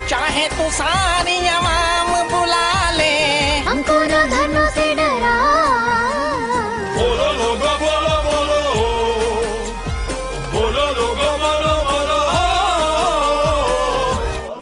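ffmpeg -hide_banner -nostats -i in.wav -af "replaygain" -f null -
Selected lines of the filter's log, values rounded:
track_gain = -1.6 dB
track_peak = 0.512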